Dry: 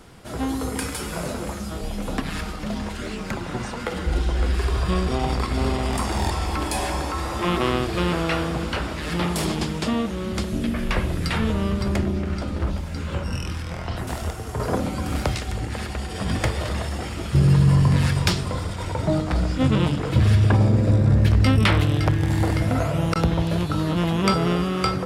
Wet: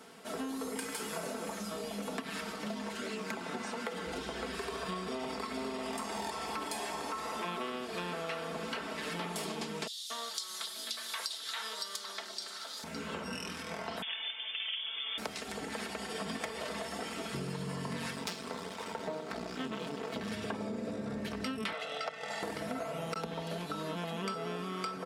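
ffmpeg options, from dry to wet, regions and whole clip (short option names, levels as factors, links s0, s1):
-filter_complex "[0:a]asettb=1/sr,asplit=3[s0][s1][s2];[s0]atrim=end=9.874[s3];[s1]atrim=start=9.87:end=12.84,asetpts=PTS-STARTPTS,afade=t=in:d=0.004:c=qsin,afade=t=out:st=2.966:d=0.004:c=qsin,highpass=1200,highshelf=f=3100:t=q:w=3:g=7,acrossover=split=3200[s4][s5];[s4]adelay=230[s6];[s6][s5]amix=inputs=2:normalize=0,atrim=end_sample=130977[s7];[s2]atrim=start=12.836[s8];[s3][s7]acrossfade=d=0.004:c1=hsin:c2=qsin[s9];[s9][s8]acrossfade=d=0.004:c1=qsin:c2=hsin,asettb=1/sr,asplit=3[s10][s11][s12];[s10]atrim=end=14.024[s13];[s11]atrim=start=14.02:end=15.18,asetpts=PTS-STARTPTS,afade=t=in:d=0.004:c=qsin,afade=t=out:st=1.156:d=0.004:c=qsin,lowshelf=f=170:g=-9,lowpass=f=3100:t=q:w=0.5098,lowpass=f=3100:t=q:w=0.6013,lowpass=f=3100:t=q:w=0.9,lowpass=f=3100:t=q:w=2.563,afreqshift=-3600[s14];[s12]atrim=start=15.176[s15];[s13][s14]acrossfade=d=0.004:c1=hsin:c2=qsin[s16];[s16][s15]acrossfade=d=0.004:c1=qsin:c2=hsin,asettb=1/sr,asplit=3[s17][s18][s19];[s17]atrim=end=18.154[s20];[s18]atrim=start=18.15:end=20.32,asetpts=PTS-STARTPTS,afade=t=in:d=0.004:c=qsin,afade=t=out:st=2.166:d=0.004:c=qsin,equalizer=f=9500:w=1.5:g=-3.5,aeval=exprs='max(val(0),0)':c=same[s21];[s19]atrim=start=20.316[s22];[s20][s21]acrossfade=d=0.004:c1=hsin:c2=qsin[s23];[s23][s22]acrossfade=d=0.004:c1=qsin:c2=hsin,asettb=1/sr,asplit=3[s24][s25][s26];[s24]atrim=end=21.734[s27];[s25]atrim=start=21.73:end=22.43,asetpts=PTS-STARTPTS,afade=t=in:d=0.004:c=qsin,afade=t=out:st=0.696:d=0.004:c=qsin,highpass=430,lowpass=6800,aecho=1:1:1.5:0.98,atrim=end_sample=30870[s28];[s26]atrim=start=22.426[s29];[s27][s28]acrossfade=d=0.004:c1=hsin:c2=qsin[s30];[s30][s29]acrossfade=d=0.004:c1=qsin:c2=hsin,highpass=270,aecho=1:1:4.5:0.67,acompressor=threshold=0.0316:ratio=6,volume=0.562"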